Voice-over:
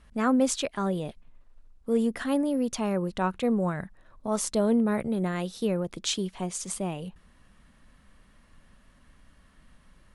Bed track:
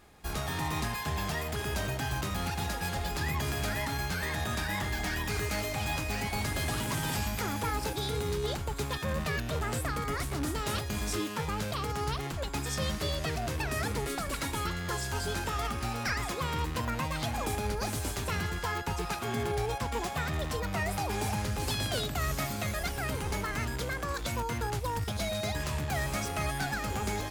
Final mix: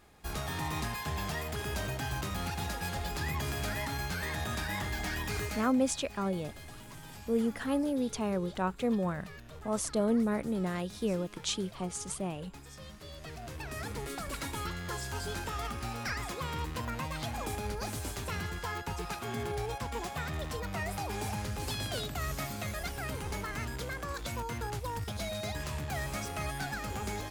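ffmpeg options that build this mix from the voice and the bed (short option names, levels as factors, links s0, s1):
-filter_complex "[0:a]adelay=5400,volume=0.596[s0];[1:a]volume=3.16,afade=t=out:st=5.42:d=0.31:silence=0.199526,afade=t=in:st=13.01:d=1.32:silence=0.237137[s1];[s0][s1]amix=inputs=2:normalize=0"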